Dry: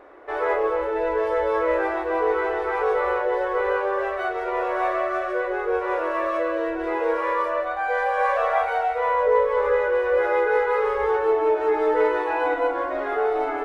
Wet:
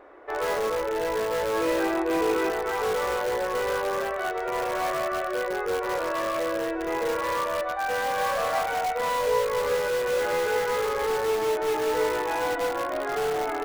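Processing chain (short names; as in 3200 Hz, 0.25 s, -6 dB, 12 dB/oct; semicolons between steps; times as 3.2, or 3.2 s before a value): in parallel at -8 dB: wrapped overs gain 19 dB; 1.52–2.49 on the sum: small resonant body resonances 320/2500 Hz, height 8 dB -> 12 dB; gain -5 dB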